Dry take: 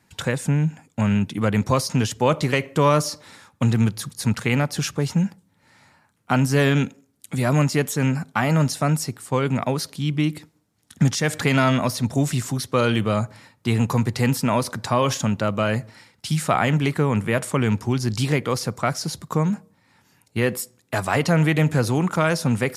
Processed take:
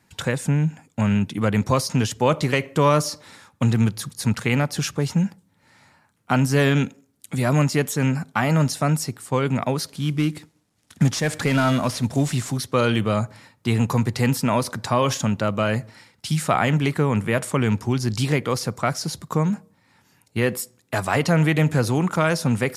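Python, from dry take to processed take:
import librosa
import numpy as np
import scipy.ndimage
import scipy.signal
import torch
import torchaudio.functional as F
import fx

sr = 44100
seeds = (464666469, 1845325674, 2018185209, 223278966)

y = fx.cvsd(x, sr, bps=64000, at=(9.88, 12.58))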